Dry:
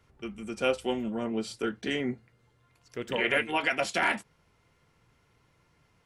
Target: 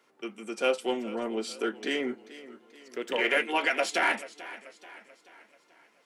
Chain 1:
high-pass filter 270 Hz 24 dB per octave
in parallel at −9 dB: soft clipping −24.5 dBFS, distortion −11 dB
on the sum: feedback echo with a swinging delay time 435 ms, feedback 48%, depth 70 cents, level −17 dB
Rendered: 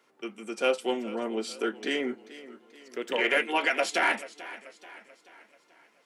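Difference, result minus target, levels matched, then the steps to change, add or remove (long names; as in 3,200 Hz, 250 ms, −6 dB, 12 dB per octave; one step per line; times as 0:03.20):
soft clipping: distortion −5 dB
change: soft clipping −31.5 dBFS, distortion −6 dB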